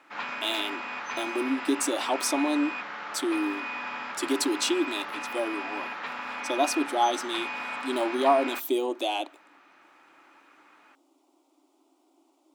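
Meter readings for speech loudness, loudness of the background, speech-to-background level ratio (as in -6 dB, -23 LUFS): -29.0 LUFS, -34.0 LUFS, 5.0 dB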